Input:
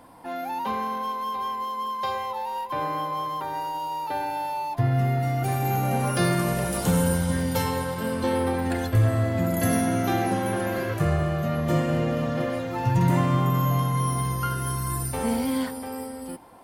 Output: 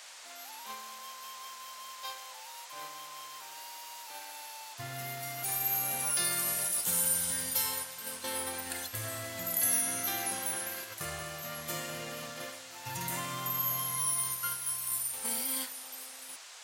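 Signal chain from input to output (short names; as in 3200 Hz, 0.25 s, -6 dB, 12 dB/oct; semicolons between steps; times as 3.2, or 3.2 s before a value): gate -26 dBFS, range -8 dB; pre-emphasis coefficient 0.97; in parallel at -1 dB: limiter -29 dBFS, peak gain reduction 11 dB; on the sum: band noise 560–8400 Hz -50 dBFS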